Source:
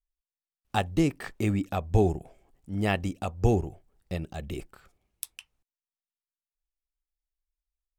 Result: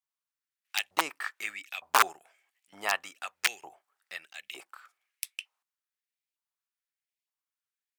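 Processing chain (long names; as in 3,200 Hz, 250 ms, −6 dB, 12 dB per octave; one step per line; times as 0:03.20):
wrap-around overflow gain 14 dB
auto-filter high-pass saw up 1.1 Hz 870–2,600 Hz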